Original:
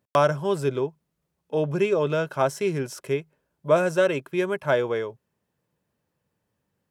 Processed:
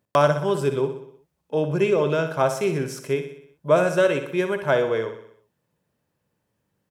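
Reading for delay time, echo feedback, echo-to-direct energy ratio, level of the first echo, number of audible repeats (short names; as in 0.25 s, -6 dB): 62 ms, 55%, -8.0 dB, -9.5 dB, 5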